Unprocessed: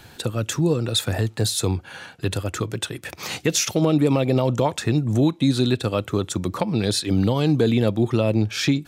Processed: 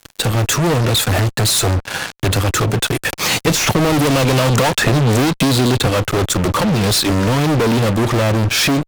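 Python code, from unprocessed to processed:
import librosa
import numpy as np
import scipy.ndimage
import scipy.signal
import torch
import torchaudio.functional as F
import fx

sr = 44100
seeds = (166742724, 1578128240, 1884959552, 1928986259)

y = fx.fuzz(x, sr, gain_db=36.0, gate_db=-39.0)
y = fx.band_squash(y, sr, depth_pct=100, at=(3.47, 5.87))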